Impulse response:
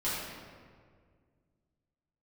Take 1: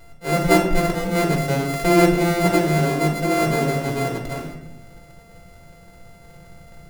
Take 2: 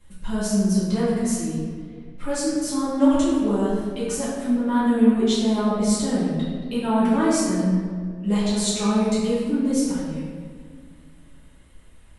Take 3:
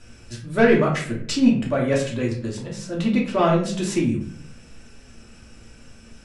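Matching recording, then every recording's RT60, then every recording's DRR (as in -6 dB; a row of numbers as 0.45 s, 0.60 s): 2; 0.90 s, 1.9 s, 0.55 s; -0.5 dB, -11.0 dB, -4.0 dB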